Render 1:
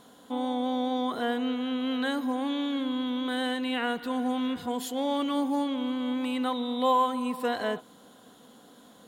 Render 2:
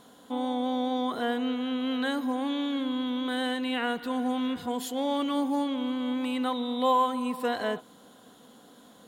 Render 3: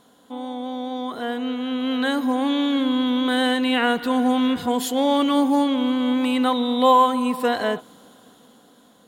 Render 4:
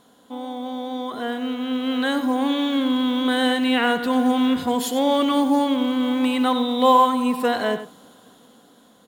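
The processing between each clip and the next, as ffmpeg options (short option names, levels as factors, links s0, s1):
-af anull
-af "dynaudnorm=f=410:g=9:m=3.55,volume=0.841"
-filter_complex "[0:a]acrusher=bits=9:mode=log:mix=0:aa=0.000001,asplit=2[s0][s1];[s1]adelay=93.29,volume=0.282,highshelf=f=4000:g=-2.1[s2];[s0][s2]amix=inputs=2:normalize=0"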